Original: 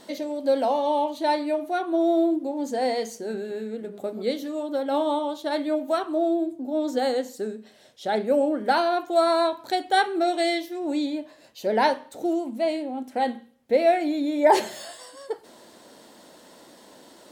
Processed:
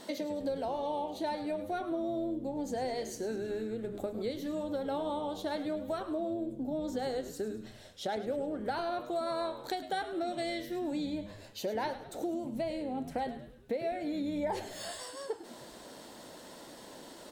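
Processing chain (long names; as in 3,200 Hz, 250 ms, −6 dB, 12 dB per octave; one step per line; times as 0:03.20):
downward compressor 6 to 1, threshold −33 dBFS, peak gain reduction 19 dB
on a send: echo with shifted repeats 104 ms, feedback 53%, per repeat −100 Hz, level −13 dB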